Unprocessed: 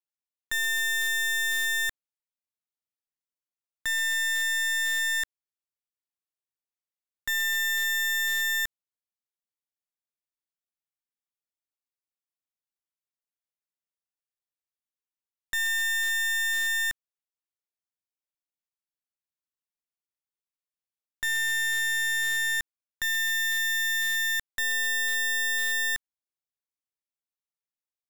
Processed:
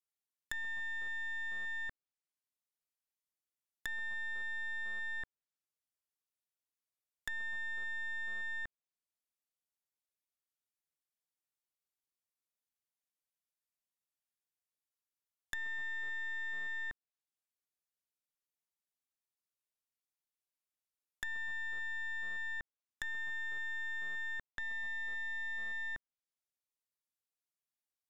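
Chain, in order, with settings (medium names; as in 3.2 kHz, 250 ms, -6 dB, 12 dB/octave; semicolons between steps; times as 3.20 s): low-pass that closes with the level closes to 1.2 kHz, closed at -32 dBFS; treble shelf 7.5 kHz +6 dB; in parallel at -10 dB: saturation -34.5 dBFS, distortion -13 dB; on the sum: trim -6.5 dB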